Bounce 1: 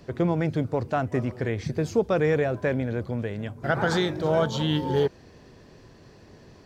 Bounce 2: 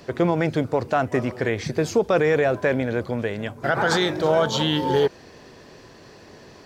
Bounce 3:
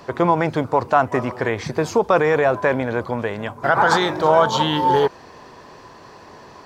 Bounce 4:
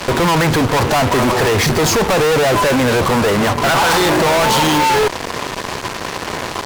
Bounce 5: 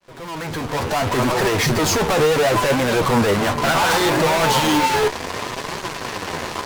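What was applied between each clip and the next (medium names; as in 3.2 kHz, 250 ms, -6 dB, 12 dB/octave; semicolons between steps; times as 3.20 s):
bass shelf 230 Hz -11.5 dB; peak limiter -18.5 dBFS, peak gain reduction 6 dB; trim +8.5 dB
peaking EQ 1 kHz +12 dB 0.89 oct
in parallel at +3 dB: peak limiter -15 dBFS, peak gain reduction 11.5 dB; on the sum: fuzz box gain 35 dB, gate -33 dBFS; trim +1 dB
fade-in on the opening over 1.35 s; flange 0.69 Hz, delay 4.9 ms, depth 9.1 ms, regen +37%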